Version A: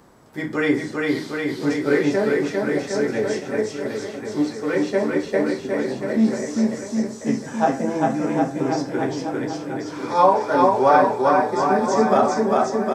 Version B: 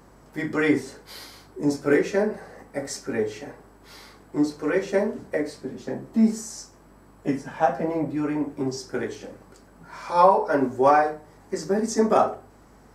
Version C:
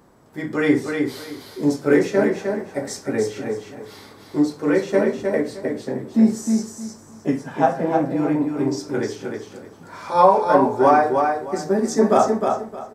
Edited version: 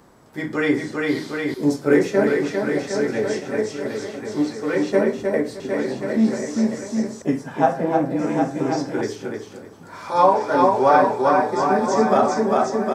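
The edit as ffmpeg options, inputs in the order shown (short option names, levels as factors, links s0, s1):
-filter_complex "[2:a]asplit=4[s0][s1][s2][s3];[0:a]asplit=5[s4][s5][s6][s7][s8];[s4]atrim=end=1.542[s9];[s0]atrim=start=1.538:end=2.272[s10];[s5]atrim=start=2.268:end=4.922[s11];[s1]atrim=start=4.918:end=5.602[s12];[s6]atrim=start=5.598:end=7.222[s13];[s2]atrim=start=7.218:end=8.192[s14];[s7]atrim=start=8.188:end=9.012[s15];[s3]atrim=start=9.008:end=10.162[s16];[s8]atrim=start=10.158[s17];[s9][s10]acrossfade=d=0.004:c1=hsin:c2=hsin[s18];[s18][s11]acrossfade=d=0.004:c1=hsin:c2=hsin[s19];[s19][s12]acrossfade=d=0.004:c1=hsin:c2=hsin[s20];[s20][s13]acrossfade=d=0.004:c1=hsin:c2=hsin[s21];[s21][s14]acrossfade=d=0.004:c1=hsin:c2=hsin[s22];[s22][s15]acrossfade=d=0.004:c1=hsin:c2=hsin[s23];[s23][s16]acrossfade=d=0.004:c1=hsin:c2=hsin[s24];[s24][s17]acrossfade=d=0.004:c1=hsin:c2=hsin"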